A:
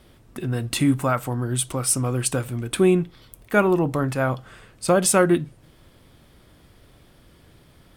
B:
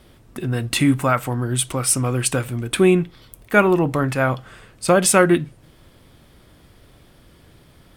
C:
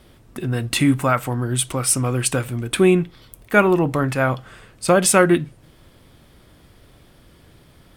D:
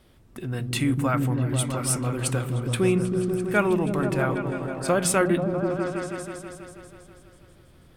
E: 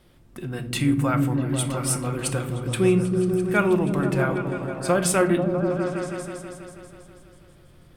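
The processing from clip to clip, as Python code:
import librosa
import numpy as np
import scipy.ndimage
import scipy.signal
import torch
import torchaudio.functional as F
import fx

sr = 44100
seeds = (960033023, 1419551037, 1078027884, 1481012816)

y1 = fx.dynamic_eq(x, sr, hz=2200.0, q=1.1, threshold_db=-41.0, ratio=4.0, max_db=5)
y1 = y1 * librosa.db_to_amplitude(2.5)
y2 = y1
y3 = fx.echo_opening(y2, sr, ms=162, hz=200, octaves=1, feedback_pct=70, wet_db=0)
y3 = y3 * librosa.db_to_amplitude(-7.5)
y4 = fx.room_shoebox(y3, sr, seeds[0], volume_m3=760.0, walls='furnished', distance_m=0.86)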